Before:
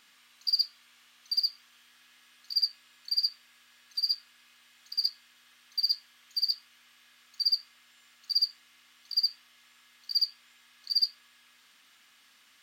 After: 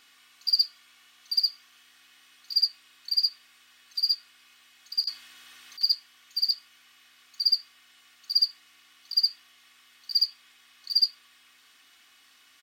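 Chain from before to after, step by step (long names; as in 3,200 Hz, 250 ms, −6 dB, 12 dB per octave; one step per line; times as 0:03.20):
0:05.04–0:05.83: compressor whose output falls as the input rises −35 dBFS, ratio −0.5
comb filter 2.7 ms, depth 55%
level +1.5 dB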